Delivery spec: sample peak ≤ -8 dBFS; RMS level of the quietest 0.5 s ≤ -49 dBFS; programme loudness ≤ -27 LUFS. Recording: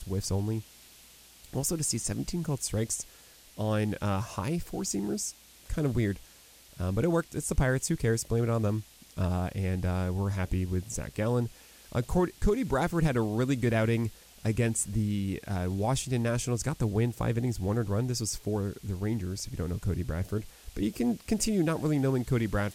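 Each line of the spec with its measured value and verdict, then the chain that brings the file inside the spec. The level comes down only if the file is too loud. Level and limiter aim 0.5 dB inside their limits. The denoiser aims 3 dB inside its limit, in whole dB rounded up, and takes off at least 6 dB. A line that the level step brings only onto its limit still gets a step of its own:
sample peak -15.0 dBFS: pass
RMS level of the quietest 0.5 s -55 dBFS: pass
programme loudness -30.5 LUFS: pass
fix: none needed

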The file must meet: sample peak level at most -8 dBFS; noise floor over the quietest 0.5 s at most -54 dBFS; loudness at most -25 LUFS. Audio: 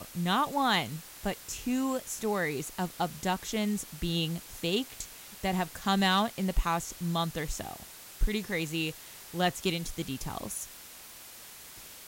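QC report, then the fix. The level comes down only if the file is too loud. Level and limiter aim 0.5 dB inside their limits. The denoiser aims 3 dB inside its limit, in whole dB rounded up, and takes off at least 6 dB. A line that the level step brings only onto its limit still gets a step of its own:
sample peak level -16.0 dBFS: pass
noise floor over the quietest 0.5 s -49 dBFS: fail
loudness -31.5 LUFS: pass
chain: noise reduction 8 dB, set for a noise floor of -49 dBFS

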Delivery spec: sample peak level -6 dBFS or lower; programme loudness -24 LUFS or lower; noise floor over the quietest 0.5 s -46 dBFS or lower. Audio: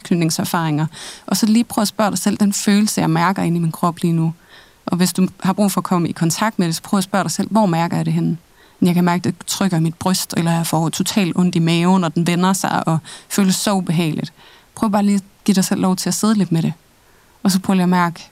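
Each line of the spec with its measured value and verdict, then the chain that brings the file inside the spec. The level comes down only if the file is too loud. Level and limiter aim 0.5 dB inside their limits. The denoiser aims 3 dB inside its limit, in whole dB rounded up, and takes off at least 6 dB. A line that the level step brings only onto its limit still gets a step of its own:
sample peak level -2.5 dBFS: fail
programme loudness -17.5 LUFS: fail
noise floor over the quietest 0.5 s -51 dBFS: pass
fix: trim -7 dB

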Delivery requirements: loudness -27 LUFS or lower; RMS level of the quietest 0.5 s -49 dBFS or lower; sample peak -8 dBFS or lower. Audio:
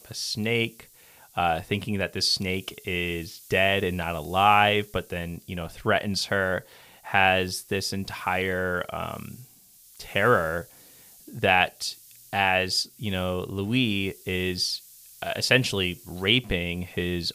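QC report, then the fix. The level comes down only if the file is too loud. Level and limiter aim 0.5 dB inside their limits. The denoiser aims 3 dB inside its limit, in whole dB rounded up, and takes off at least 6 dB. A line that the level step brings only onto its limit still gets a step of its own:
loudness -25.5 LUFS: fail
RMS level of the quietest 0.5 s -54 dBFS: pass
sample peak -5.0 dBFS: fail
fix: trim -2 dB; peak limiter -8.5 dBFS

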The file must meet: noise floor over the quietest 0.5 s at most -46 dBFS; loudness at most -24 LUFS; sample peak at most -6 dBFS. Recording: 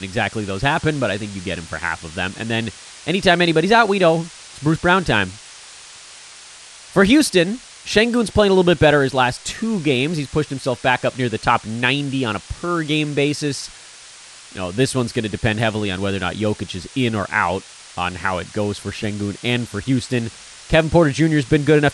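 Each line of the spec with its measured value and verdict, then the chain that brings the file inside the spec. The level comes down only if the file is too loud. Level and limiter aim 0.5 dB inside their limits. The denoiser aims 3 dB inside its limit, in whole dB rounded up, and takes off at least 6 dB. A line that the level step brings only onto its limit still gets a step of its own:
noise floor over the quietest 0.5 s -41 dBFS: fail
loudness -19.0 LUFS: fail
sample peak -2.0 dBFS: fail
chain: trim -5.5 dB

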